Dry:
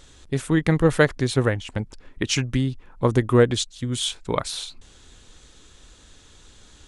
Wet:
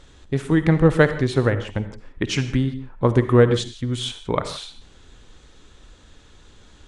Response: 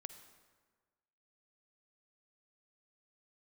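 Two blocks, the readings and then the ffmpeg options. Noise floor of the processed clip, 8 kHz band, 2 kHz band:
-50 dBFS, -6.5 dB, +0.5 dB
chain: -filter_complex "[0:a]lowpass=f=2700:p=1[s0];[1:a]atrim=start_sample=2205,afade=t=out:st=0.23:d=0.01,atrim=end_sample=10584[s1];[s0][s1]afir=irnorm=-1:irlink=0,volume=2.24"

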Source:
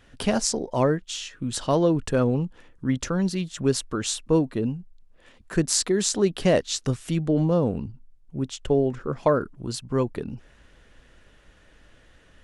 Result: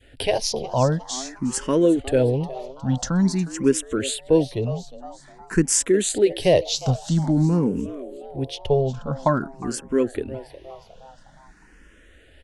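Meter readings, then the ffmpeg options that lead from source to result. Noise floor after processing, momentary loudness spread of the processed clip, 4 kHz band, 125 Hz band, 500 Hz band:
-52 dBFS, 13 LU, +1.5 dB, +3.0 dB, +3.0 dB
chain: -filter_complex "[0:a]bandreject=f=1200:w=8.4,adynamicequalizer=threshold=0.0112:dfrequency=1200:dqfactor=0.91:tfrequency=1200:tqfactor=0.91:attack=5:release=100:ratio=0.375:range=3.5:mode=cutabove:tftype=bell,asplit=5[s0][s1][s2][s3][s4];[s1]adelay=360,afreqshift=130,volume=0.158[s5];[s2]adelay=720,afreqshift=260,volume=0.0776[s6];[s3]adelay=1080,afreqshift=390,volume=0.038[s7];[s4]adelay=1440,afreqshift=520,volume=0.0186[s8];[s0][s5][s6][s7][s8]amix=inputs=5:normalize=0,asplit=2[s9][s10];[s10]afreqshift=0.49[s11];[s9][s11]amix=inputs=2:normalize=1,volume=1.88"

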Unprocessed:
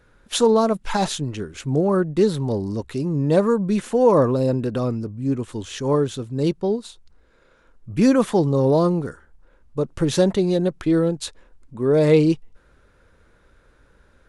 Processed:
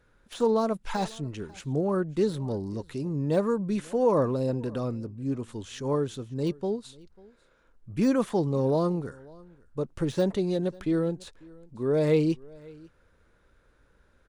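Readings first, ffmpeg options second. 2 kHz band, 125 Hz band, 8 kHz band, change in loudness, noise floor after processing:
-8.0 dB, -7.5 dB, -13.0 dB, -7.5 dB, -64 dBFS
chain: -filter_complex "[0:a]deesser=0.7,asplit=2[s0][s1];[s1]aecho=0:1:544:0.0631[s2];[s0][s2]amix=inputs=2:normalize=0,volume=0.422"

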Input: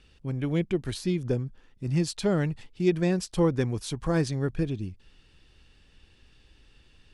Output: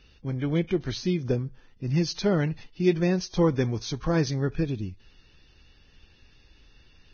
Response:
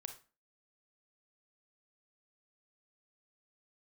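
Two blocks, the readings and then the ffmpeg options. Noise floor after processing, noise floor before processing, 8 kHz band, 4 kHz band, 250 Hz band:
-58 dBFS, -60 dBFS, -0.5 dB, +3.0 dB, +1.0 dB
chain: -filter_complex "[0:a]asplit=2[s0][s1];[1:a]atrim=start_sample=2205[s2];[s1][s2]afir=irnorm=-1:irlink=0,volume=0.266[s3];[s0][s3]amix=inputs=2:normalize=0" -ar 16000 -c:a libvorbis -b:a 16k

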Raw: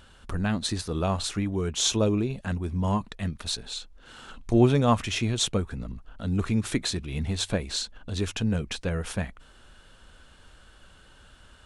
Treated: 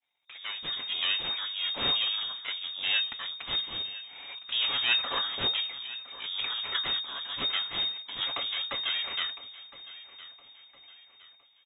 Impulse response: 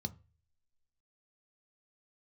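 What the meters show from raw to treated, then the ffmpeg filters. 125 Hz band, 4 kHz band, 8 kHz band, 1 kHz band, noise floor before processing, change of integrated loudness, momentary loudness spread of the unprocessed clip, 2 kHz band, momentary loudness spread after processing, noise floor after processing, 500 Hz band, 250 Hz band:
-27.0 dB, +6.5 dB, under -40 dB, -6.0 dB, -54 dBFS, -1.5 dB, 14 LU, +4.0 dB, 16 LU, -60 dBFS, -17.0 dB, -24.5 dB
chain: -filter_complex "[0:a]agate=range=0.0224:threshold=0.00794:ratio=3:detection=peak,lowshelf=f=250:g=-11,aecho=1:1:6.7:0.46,acrossover=split=300|900|2500[s0][s1][s2][s3];[s0]acompressor=threshold=0.00398:ratio=6[s4];[s1]alimiter=level_in=1.12:limit=0.0631:level=0:latency=1:release=472,volume=0.891[s5];[s4][s5][s2][s3]amix=inputs=4:normalize=0,dynaudnorm=f=180:g=7:m=3.76,aeval=exprs='max(val(0),0)':c=same,flanger=delay=6.9:depth=8.9:regen=-72:speed=0.98:shape=triangular,asoftclip=type=tanh:threshold=0.355,aecho=1:1:1012|2024|3036:0.141|0.0579|0.0237,lowpass=f=3100:t=q:w=0.5098,lowpass=f=3100:t=q:w=0.6013,lowpass=f=3100:t=q:w=0.9,lowpass=f=3100:t=q:w=2.563,afreqshift=-3700"

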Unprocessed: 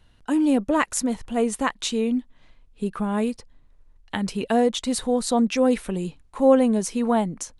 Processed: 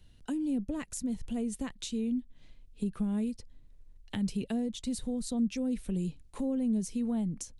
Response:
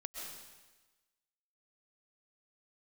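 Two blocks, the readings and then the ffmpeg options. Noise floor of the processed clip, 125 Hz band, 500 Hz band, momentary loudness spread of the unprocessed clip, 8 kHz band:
-57 dBFS, -4.0 dB, -19.0 dB, 11 LU, -11.5 dB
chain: -filter_complex "[0:a]equalizer=f=1100:w=0.69:g=-13,acrossover=split=200[s0][s1];[s1]acompressor=threshold=0.0126:ratio=6[s2];[s0][s2]amix=inputs=2:normalize=0"

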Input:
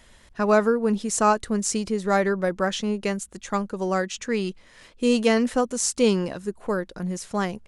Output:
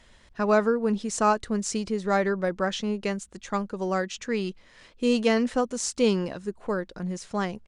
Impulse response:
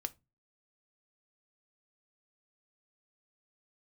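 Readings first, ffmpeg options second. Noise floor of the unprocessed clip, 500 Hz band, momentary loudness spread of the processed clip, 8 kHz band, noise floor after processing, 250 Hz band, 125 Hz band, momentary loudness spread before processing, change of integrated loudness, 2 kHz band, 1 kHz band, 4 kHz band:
-54 dBFS, -2.5 dB, 9 LU, -6.0 dB, -56 dBFS, -2.5 dB, -2.5 dB, 9 LU, -2.5 dB, -2.5 dB, -2.5 dB, -2.5 dB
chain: -af "equalizer=f=4900:t=o:w=1.5:g=2.5,aresample=22050,aresample=44100,highshelf=f=7900:g=-11,volume=0.75"

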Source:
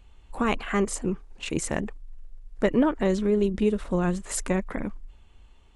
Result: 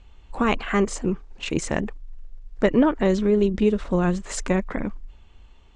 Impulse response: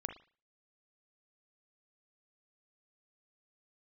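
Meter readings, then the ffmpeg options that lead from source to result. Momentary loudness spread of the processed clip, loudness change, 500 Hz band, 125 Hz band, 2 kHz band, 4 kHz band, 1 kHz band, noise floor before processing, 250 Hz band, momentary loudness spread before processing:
12 LU, +3.5 dB, +3.5 dB, +3.5 dB, +3.5 dB, +3.5 dB, +3.5 dB, -54 dBFS, +3.5 dB, 12 LU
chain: -af "lowpass=f=7100:w=0.5412,lowpass=f=7100:w=1.3066,volume=1.5"

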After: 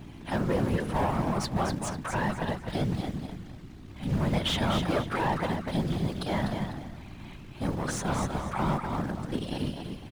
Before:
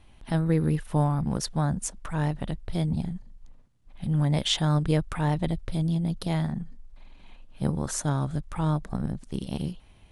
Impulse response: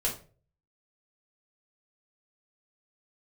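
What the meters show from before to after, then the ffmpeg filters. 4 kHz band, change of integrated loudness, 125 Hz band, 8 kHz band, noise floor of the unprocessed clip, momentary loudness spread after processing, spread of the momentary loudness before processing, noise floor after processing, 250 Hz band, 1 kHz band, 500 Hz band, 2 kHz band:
-1.5 dB, -2.0 dB, -5.5 dB, -4.5 dB, -55 dBFS, 14 LU, 10 LU, -45 dBFS, -2.0 dB, +4.0 dB, +2.0 dB, +5.0 dB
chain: -filter_complex "[0:a]aeval=exprs='val(0)+0.0126*(sin(2*PI*60*n/s)+sin(2*PI*2*60*n/s)/2+sin(2*PI*3*60*n/s)/3+sin(2*PI*4*60*n/s)/4+sin(2*PI*5*60*n/s)/5)':c=same,acrusher=bits=7:mode=log:mix=0:aa=0.000001,asplit=2[s0][s1];[s1]highpass=f=720:p=1,volume=17.8,asoftclip=type=tanh:threshold=0.355[s2];[s0][s2]amix=inputs=2:normalize=0,lowpass=f=2100:p=1,volume=0.501,asplit=2[s3][s4];[s4]aecho=0:1:248|496|744|992:0.501|0.14|0.0393|0.011[s5];[s3][s5]amix=inputs=2:normalize=0,afftfilt=real='hypot(re,im)*cos(2*PI*random(0))':imag='hypot(re,im)*sin(2*PI*random(1))':win_size=512:overlap=0.75,volume=0.75"

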